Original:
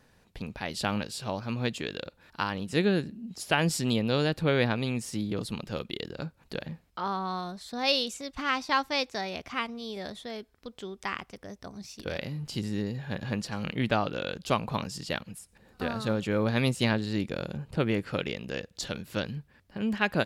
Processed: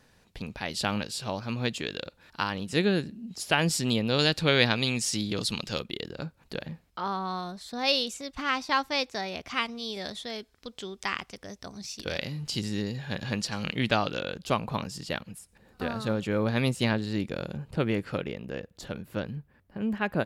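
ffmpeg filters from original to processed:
-af "asetnsamples=n=441:p=0,asendcmd='4.19 equalizer g 13;5.8 equalizer g 1;9.48 equalizer g 7.5;14.2 equalizer g -1;18.18 equalizer g -10.5',equalizer=f=5.2k:t=o:w=2.4:g=3.5"

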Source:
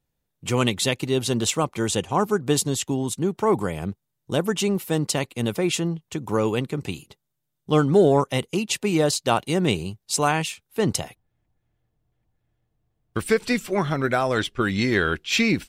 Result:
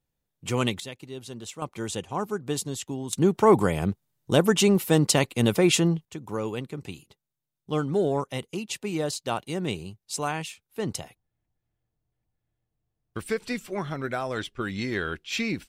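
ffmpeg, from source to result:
-af "asetnsamples=n=441:p=0,asendcmd='0.8 volume volume -16dB;1.62 volume volume -8dB;3.13 volume volume 3dB;6.05 volume volume -8dB',volume=-4dB"

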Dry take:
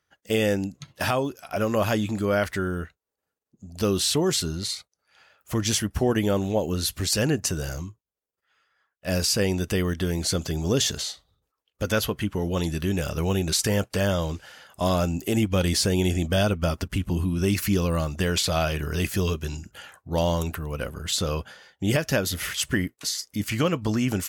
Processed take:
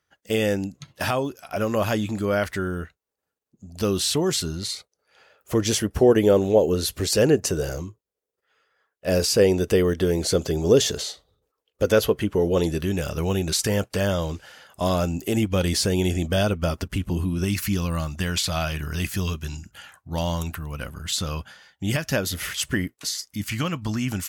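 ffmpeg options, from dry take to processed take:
-af "asetnsamples=n=441:p=0,asendcmd='4.75 equalizer g 10.5;12.81 equalizer g 1.5;17.44 equalizer g -8.5;22.12 equalizer g -0.5;23.26 equalizer g -10.5',equalizer=f=450:t=o:w=0.95:g=0.5"

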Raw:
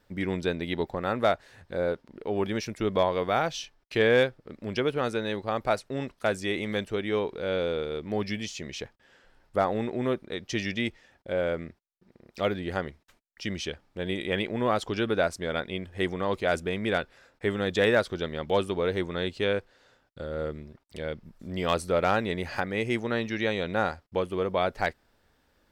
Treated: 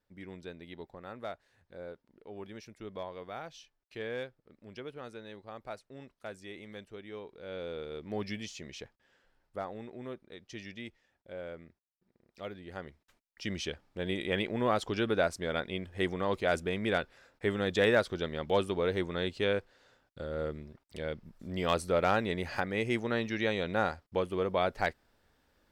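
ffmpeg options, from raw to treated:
-af "volume=5.5dB,afade=t=in:st=7.32:d=0.94:silence=0.298538,afade=t=out:st=8.26:d=1.49:silence=0.375837,afade=t=in:st=12.66:d=0.92:silence=0.266073"

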